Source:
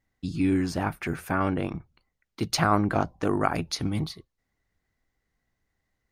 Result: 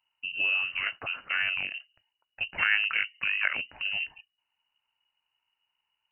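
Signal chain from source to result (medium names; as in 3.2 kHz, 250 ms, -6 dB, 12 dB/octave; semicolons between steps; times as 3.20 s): frequency inversion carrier 2.9 kHz; fifteen-band graphic EQ 100 Hz +4 dB, 400 Hz -4 dB, 1.6 kHz +3 dB; trim -4.5 dB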